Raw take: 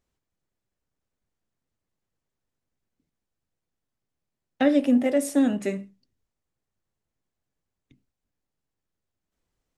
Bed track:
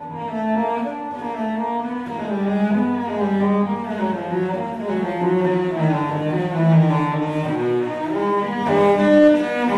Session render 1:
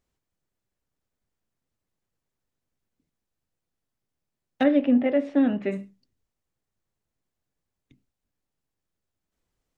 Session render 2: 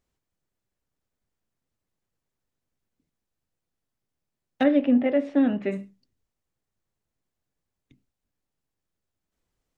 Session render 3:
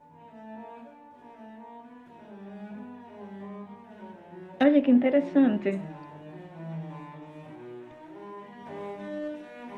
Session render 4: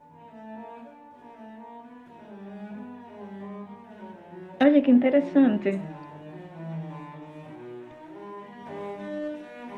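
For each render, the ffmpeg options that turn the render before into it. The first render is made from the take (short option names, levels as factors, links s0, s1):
-filter_complex "[0:a]asplit=3[s0][s1][s2];[s0]afade=t=out:st=4.63:d=0.02[s3];[s1]lowpass=f=3100:w=0.5412,lowpass=f=3100:w=1.3066,afade=t=in:st=4.63:d=0.02,afade=t=out:st=5.71:d=0.02[s4];[s2]afade=t=in:st=5.71:d=0.02[s5];[s3][s4][s5]amix=inputs=3:normalize=0"
-af anull
-filter_complex "[1:a]volume=0.0708[s0];[0:a][s0]amix=inputs=2:normalize=0"
-af "volume=1.26"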